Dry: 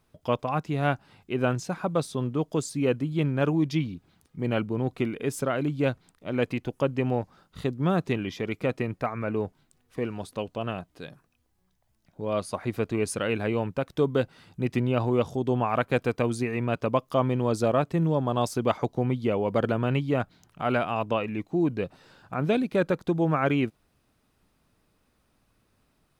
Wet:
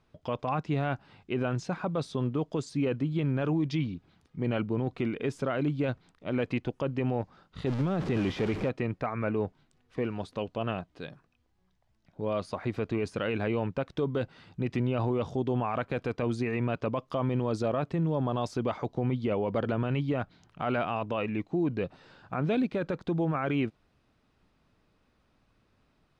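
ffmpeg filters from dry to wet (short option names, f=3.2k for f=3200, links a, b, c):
-filter_complex "[0:a]asettb=1/sr,asplit=3[a][b][c];[a]atrim=end=7.664[d];[b]atrim=start=7.66:end=8.69,asetpts=PTS-STARTPTS,afade=t=in:d=0.004:c=qsin,afade=t=out:st=1.026:d=0.004:c=qsin,aeval=exprs='val(0)+0.5*0.0398*sgn(val(0))':c=same[e];[c]atrim=start=8.686[f];[d][e]acrossfade=d=0.004:c1=hsin:c2=qsin[g];[g][f]acrossfade=d=0.004:c1=qsin:c2=hsin,deesser=0.75,lowpass=4.8k,alimiter=limit=-20.5dB:level=0:latency=1:release=21"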